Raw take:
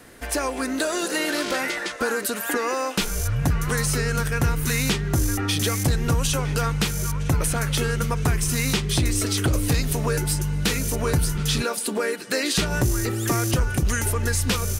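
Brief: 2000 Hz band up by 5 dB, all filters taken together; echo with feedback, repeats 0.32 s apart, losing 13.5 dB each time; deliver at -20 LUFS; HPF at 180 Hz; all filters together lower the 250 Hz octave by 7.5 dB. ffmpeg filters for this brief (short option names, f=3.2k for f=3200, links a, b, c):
-af "highpass=180,equalizer=f=250:t=o:g=-8.5,equalizer=f=2k:t=o:g=6.5,aecho=1:1:320|640:0.211|0.0444,volume=4dB"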